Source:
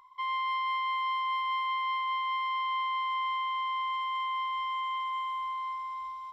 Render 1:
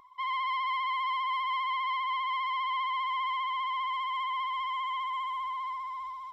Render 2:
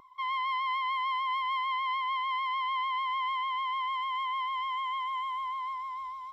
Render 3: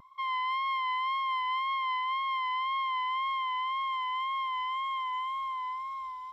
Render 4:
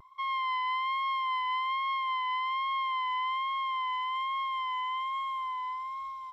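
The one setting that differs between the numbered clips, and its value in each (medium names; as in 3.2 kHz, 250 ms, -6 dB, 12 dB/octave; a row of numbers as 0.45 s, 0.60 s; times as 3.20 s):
vibrato, rate: 15 Hz, 6.7 Hz, 1.9 Hz, 1.2 Hz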